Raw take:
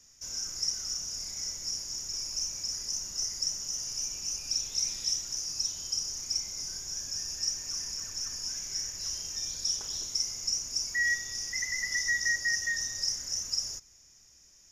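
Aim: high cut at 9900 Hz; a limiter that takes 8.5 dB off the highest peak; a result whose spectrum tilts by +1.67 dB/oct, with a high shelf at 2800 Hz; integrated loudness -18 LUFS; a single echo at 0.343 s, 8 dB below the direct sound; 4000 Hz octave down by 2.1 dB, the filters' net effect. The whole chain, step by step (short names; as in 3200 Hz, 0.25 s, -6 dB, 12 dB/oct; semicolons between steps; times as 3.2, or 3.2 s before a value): LPF 9900 Hz; high shelf 2800 Hz +3 dB; bell 4000 Hz -7.5 dB; limiter -26 dBFS; echo 0.343 s -8 dB; gain +15.5 dB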